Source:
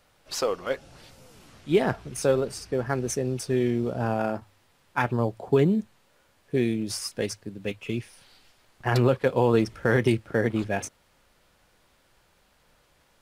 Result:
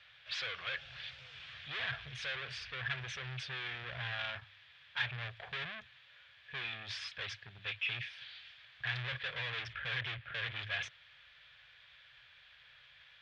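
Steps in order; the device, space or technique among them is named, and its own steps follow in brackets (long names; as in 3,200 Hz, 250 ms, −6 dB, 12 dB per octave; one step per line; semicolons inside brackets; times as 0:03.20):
0:09.73–0:10.46: low-pass filter 3,100 Hz
scooped metal amplifier (tube saturation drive 37 dB, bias 0.35; loudspeaker in its box 77–3,900 Hz, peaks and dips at 130 Hz +7 dB, 200 Hz −9 dB, 890 Hz −5 dB, 1,700 Hz +10 dB, 2,400 Hz +7 dB, 3,400 Hz +10 dB; guitar amp tone stack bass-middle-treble 10-0-10)
level +6 dB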